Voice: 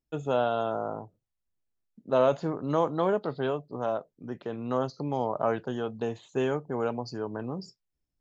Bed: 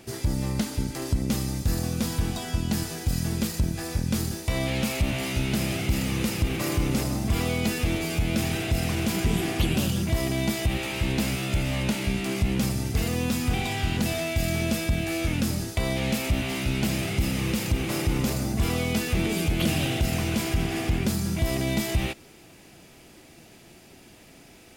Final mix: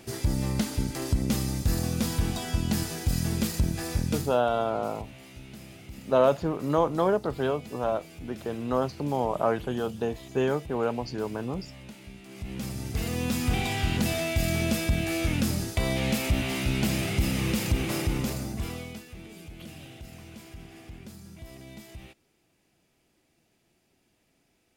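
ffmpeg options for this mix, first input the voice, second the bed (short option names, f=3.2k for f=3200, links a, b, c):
-filter_complex "[0:a]adelay=4000,volume=2dB[a];[1:a]volume=18dB,afade=t=out:st=4.02:d=0.38:silence=0.11885,afade=t=in:st=12.28:d=1.25:silence=0.11885,afade=t=out:st=17.79:d=1.26:silence=0.112202[b];[a][b]amix=inputs=2:normalize=0"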